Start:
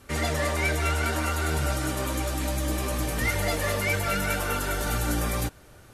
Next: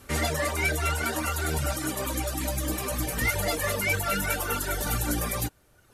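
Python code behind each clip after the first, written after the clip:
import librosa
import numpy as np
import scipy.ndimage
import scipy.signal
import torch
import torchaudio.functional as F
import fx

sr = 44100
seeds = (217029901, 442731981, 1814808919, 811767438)

y = fx.dereverb_blind(x, sr, rt60_s=1.2)
y = fx.high_shelf(y, sr, hz=10000.0, db=7.5)
y = F.gain(torch.from_numpy(y), 1.0).numpy()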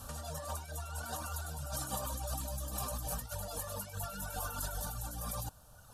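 y = fx.over_compress(x, sr, threshold_db=-36.0, ratio=-1.0)
y = fx.fixed_phaser(y, sr, hz=870.0, stages=4)
y = F.gain(torch.from_numpy(y), -2.0).numpy()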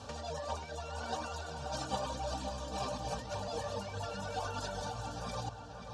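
y = fx.quant_companded(x, sr, bits=8)
y = fx.cabinet(y, sr, low_hz=100.0, low_slope=12, high_hz=5800.0, hz=(150.0, 440.0, 850.0, 1300.0, 2300.0), db=(-6, 7, 3, -7, 4))
y = fx.echo_filtered(y, sr, ms=532, feedback_pct=58, hz=4000.0, wet_db=-8.0)
y = F.gain(torch.from_numpy(y), 3.5).numpy()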